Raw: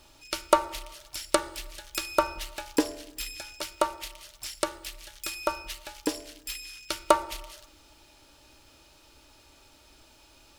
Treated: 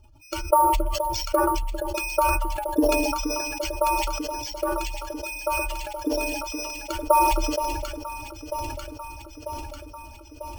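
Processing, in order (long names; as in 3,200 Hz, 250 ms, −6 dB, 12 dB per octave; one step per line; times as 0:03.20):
expanding power law on the bin magnitudes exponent 2.4
Butterworth low-pass 6,100 Hz 36 dB per octave
parametric band 99 Hz +11.5 dB 1.5 octaves
notch filter 3,800 Hz, Q 5.2
delay that swaps between a low-pass and a high-pass 472 ms, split 900 Hz, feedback 82%, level −8 dB
bad sample-rate conversion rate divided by 4×, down none, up hold
level that may fall only so fast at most 26 dB per second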